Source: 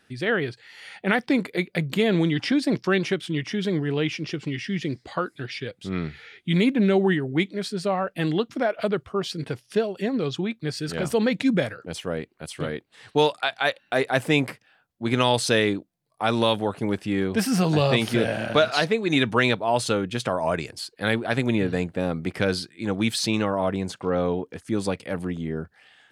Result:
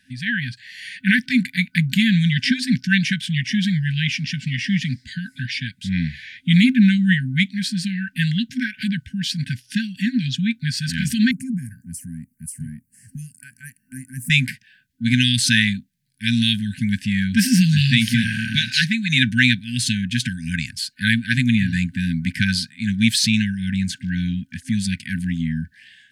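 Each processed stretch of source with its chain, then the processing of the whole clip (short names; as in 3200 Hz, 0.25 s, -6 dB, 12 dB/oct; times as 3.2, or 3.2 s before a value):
11.31–14.3 EQ curve 410 Hz 0 dB, 3300 Hz -26 dB, 9700 Hz +8 dB + compressor 1.5:1, threshold -42 dBFS + Butterworth band-stop 3700 Hz, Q 2.4
whole clip: FFT band-reject 260–1500 Hz; AGC gain up to 5 dB; gain +3 dB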